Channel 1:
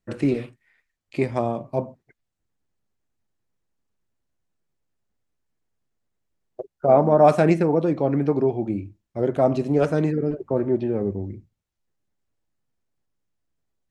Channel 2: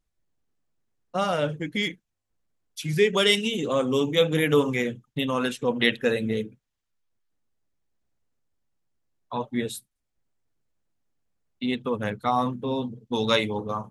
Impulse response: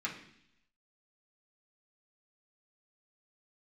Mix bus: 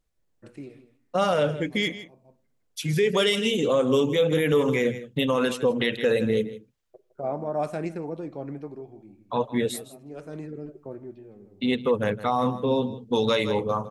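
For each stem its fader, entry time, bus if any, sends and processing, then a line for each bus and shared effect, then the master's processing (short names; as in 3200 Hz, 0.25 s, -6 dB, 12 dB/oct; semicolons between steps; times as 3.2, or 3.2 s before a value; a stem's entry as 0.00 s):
-13.5 dB, 0.35 s, send -21.5 dB, echo send -20 dB, high shelf 9500 Hz +11 dB; auto duck -17 dB, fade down 0.80 s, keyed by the second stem
+2.0 dB, 0.00 s, no send, echo send -16 dB, bell 500 Hz +5.5 dB 0.55 oct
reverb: on, RT60 0.70 s, pre-delay 3 ms
echo: echo 0.16 s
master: limiter -13 dBFS, peak gain reduction 9.5 dB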